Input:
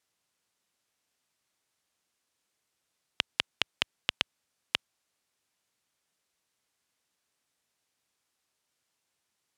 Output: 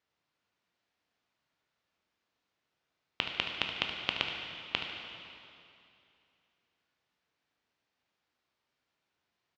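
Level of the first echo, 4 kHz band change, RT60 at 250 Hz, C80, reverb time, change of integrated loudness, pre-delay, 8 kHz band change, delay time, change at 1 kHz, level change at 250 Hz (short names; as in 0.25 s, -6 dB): -10.5 dB, -1.5 dB, 2.7 s, 4.0 dB, 2.6 s, -2.0 dB, 6 ms, -11.5 dB, 74 ms, +1.5 dB, +3.0 dB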